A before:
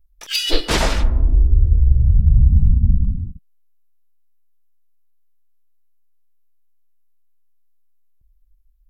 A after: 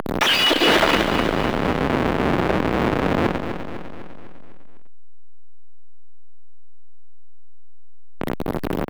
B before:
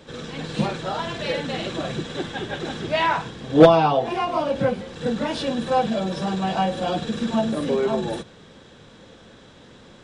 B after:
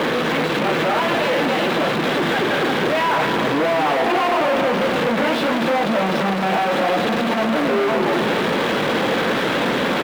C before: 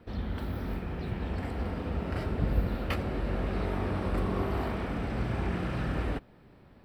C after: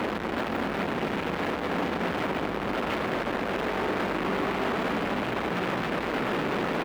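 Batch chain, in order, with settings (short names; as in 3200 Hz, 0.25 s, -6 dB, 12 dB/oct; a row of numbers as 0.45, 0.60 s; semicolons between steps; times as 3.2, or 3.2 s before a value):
infinite clipping; three-band isolator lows -21 dB, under 180 Hz, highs -20 dB, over 3200 Hz; feedback echo 0.251 s, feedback 54%, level -8.5 dB; gain +6 dB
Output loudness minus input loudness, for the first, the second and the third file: -2.0, +4.0, +4.0 LU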